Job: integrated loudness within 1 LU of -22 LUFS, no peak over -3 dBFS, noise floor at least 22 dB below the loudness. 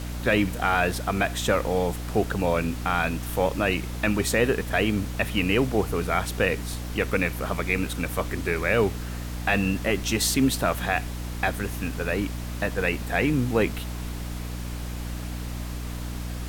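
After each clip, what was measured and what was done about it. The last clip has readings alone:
hum 60 Hz; highest harmonic 300 Hz; hum level -30 dBFS; noise floor -33 dBFS; noise floor target -48 dBFS; loudness -26.0 LUFS; peak level -8.0 dBFS; loudness target -22.0 LUFS
-> hum notches 60/120/180/240/300 Hz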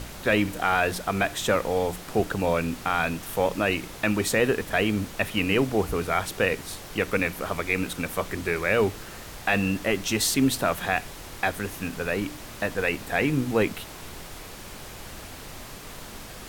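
hum not found; noise floor -41 dBFS; noise floor target -48 dBFS
-> noise print and reduce 7 dB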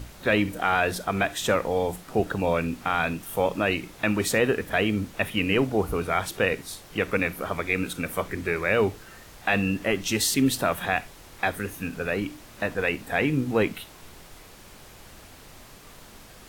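noise floor -48 dBFS; loudness -26.0 LUFS; peak level -8.5 dBFS; loudness target -22.0 LUFS
-> trim +4 dB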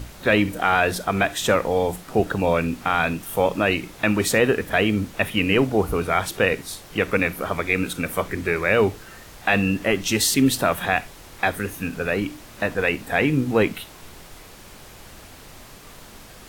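loudness -22.0 LUFS; peak level -4.5 dBFS; noise floor -44 dBFS

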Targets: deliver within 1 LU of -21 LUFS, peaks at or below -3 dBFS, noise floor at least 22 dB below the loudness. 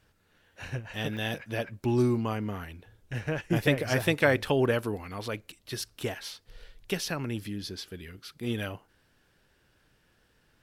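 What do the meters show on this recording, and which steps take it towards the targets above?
dropouts 3; longest dropout 2.1 ms; loudness -30.5 LUFS; peak level -9.5 dBFS; loudness target -21.0 LUFS
-> interpolate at 1.17/4.45/5.82 s, 2.1 ms; trim +9.5 dB; peak limiter -3 dBFS

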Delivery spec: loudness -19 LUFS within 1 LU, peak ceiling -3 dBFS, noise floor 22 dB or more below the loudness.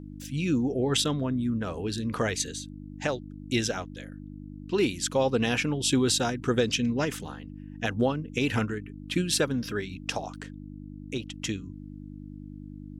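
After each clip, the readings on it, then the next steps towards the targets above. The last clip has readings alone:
hum 50 Hz; highest harmonic 300 Hz; hum level -40 dBFS; loudness -28.5 LUFS; peak level -12.5 dBFS; loudness target -19.0 LUFS
-> de-hum 50 Hz, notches 6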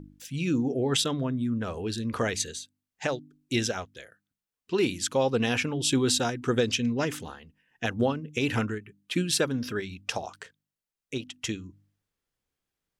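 hum not found; loudness -28.5 LUFS; peak level -13.0 dBFS; loudness target -19.0 LUFS
-> trim +9.5 dB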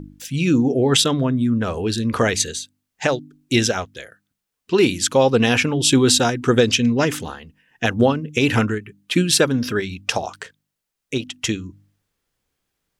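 loudness -19.0 LUFS; peak level -3.5 dBFS; noise floor -81 dBFS

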